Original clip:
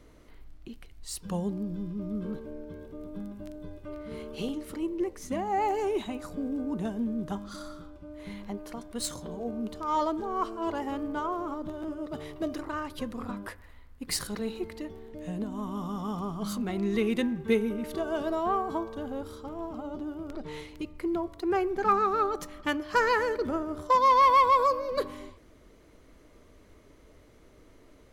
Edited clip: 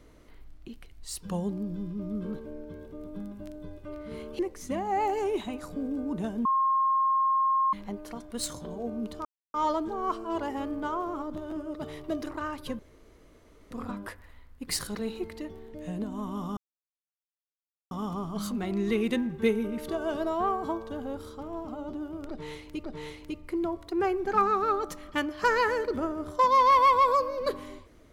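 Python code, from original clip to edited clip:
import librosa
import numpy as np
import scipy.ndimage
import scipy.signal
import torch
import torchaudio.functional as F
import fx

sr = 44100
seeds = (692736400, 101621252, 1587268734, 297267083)

y = fx.edit(x, sr, fx.cut(start_s=4.39, length_s=0.61),
    fx.bleep(start_s=7.06, length_s=1.28, hz=1070.0, db=-21.5),
    fx.insert_silence(at_s=9.86, length_s=0.29),
    fx.insert_room_tone(at_s=13.11, length_s=0.92),
    fx.insert_silence(at_s=15.97, length_s=1.34),
    fx.repeat(start_s=20.35, length_s=0.55, count=2), tone=tone)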